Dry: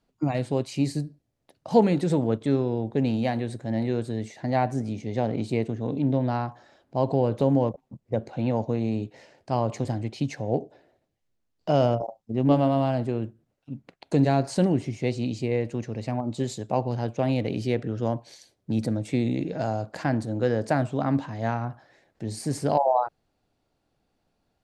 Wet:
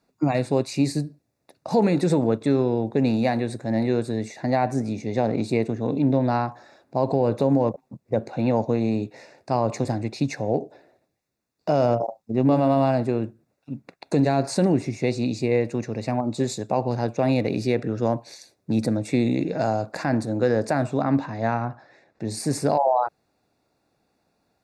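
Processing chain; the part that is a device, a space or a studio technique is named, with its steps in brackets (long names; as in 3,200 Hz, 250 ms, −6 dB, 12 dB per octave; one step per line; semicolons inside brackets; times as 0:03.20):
PA system with an anti-feedback notch (high-pass filter 160 Hz 6 dB per octave; Butterworth band-reject 3,100 Hz, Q 4.9; brickwall limiter −16.5 dBFS, peak gain reduction 7.5 dB)
0:21.02–0:22.25: high-frequency loss of the air 74 metres
level +5.5 dB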